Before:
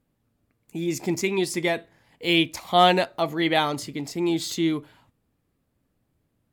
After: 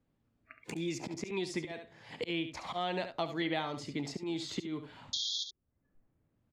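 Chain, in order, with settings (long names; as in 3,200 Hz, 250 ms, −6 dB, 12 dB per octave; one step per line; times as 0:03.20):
noise reduction from a noise print of the clip's start 29 dB
volume swells 491 ms
sound drawn into the spectrogram noise, 0:05.13–0:05.44, 3,200–7,000 Hz −25 dBFS
high-frequency loss of the air 100 metres
single-tap delay 70 ms −10.5 dB
multiband upward and downward compressor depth 100%
level −5.5 dB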